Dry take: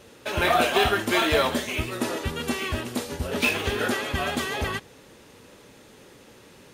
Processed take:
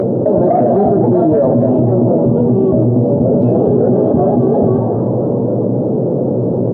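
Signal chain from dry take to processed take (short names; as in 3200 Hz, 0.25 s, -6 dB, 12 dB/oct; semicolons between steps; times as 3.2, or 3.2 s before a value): octaver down 1 oct, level -1 dB; elliptic band-pass 120–650 Hz, stop band 50 dB; upward compressor, threshold -35 dBFS; in parallel at -6 dB: soft clip -17 dBFS, distortion -19 dB; on the sum: doubler 16 ms -11 dB; frequency-shifting echo 0.267 s, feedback 45%, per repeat +86 Hz, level -18 dB; on a send at -14 dB: reverb RT60 1.6 s, pre-delay 4 ms; on the sum: maximiser +19 dB; fast leveller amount 70%; gain -4.5 dB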